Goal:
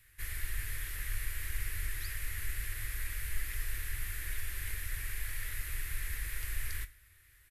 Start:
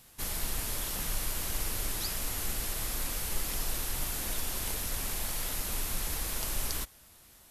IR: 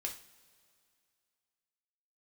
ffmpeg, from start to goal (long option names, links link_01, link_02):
-filter_complex "[0:a]firequalizer=gain_entry='entry(110,0);entry(180,-30);entry(320,-14);entry(490,-17);entry(760,-24);entry(1800,5);entry(3000,-9);entry(5700,-15);entry(9800,-8)':delay=0.05:min_phase=1,asplit=2[link_01][link_02];[1:a]atrim=start_sample=2205,adelay=21[link_03];[link_02][link_03]afir=irnorm=-1:irlink=0,volume=-12dB[link_04];[link_01][link_04]amix=inputs=2:normalize=0"